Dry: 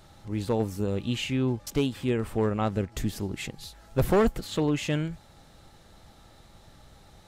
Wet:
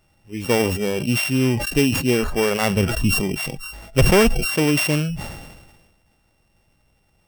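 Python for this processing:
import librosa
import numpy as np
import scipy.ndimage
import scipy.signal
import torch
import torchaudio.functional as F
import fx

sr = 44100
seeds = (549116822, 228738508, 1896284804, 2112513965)

p1 = np.r_[np.sort(x[:len(x) // 16 * 16].reshape(-1, 16), axis=1).ravel(), x[len(x) // 16 * 16:]]
p2 = fx.rider(p1, sr, range_db=3, speed_s=0.5)
p3 = p1 + (p2 * librosa.db_to_amplitude(3.0))
p4 = fx.noise_reduce_blind(p3, sr, reduce_db=18)
y = fx.sustainer(p4, sr, db_per_s=42.0)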